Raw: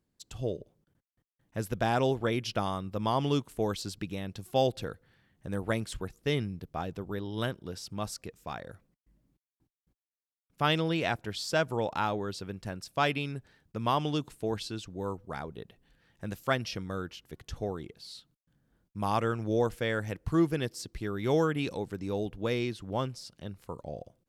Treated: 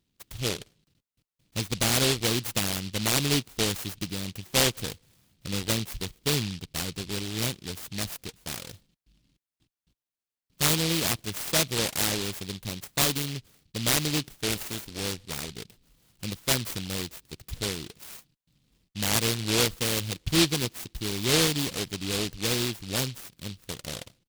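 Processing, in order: 14.48–15.00 s: spectral peaks clipped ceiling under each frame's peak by 13 dB; resampled via 32 kHz; delay time shaken by noise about 3.5 kHz, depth 0.36 ms; trim +3 dB

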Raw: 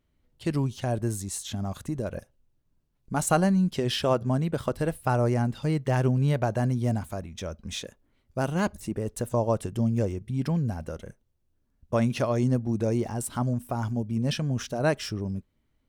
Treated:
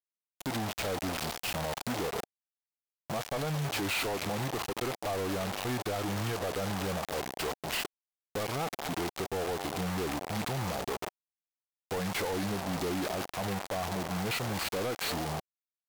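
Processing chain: CVSD coder 32 kbps; frequency-shifting echo 223 ms, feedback 38%, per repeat -58 Hz, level -18.5 dB; bit crusher 6-bit; pitch shift -4 st; compression, threshold -28 dBFS, peak gain reduction 10 dB; high-pass 580 Hz 6 dB/octave; waveshaping leveller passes 5; peaking EQ 750 Hz +5.5 dB 0.54 oct; peak limiter -22.5 dBFS, peak gain reduction 5 dB; trim -5 dB

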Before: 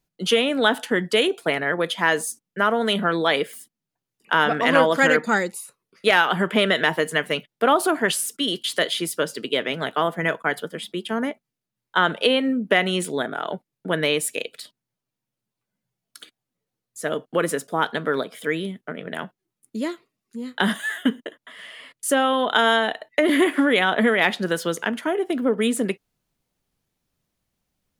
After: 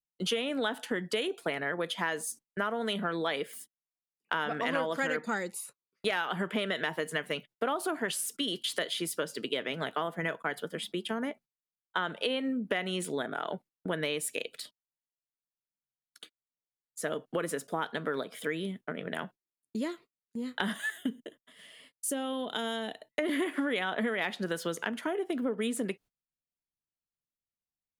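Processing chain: gate -43 dBFS, range -23 dB; 20.90–23.19 s: peaking EQ 1.3 kHz -13.5 dB 2.7 oct; compression 3:1, threshold -27 dBFS, peak gain reduction 12 dB; trim -3.5 dB

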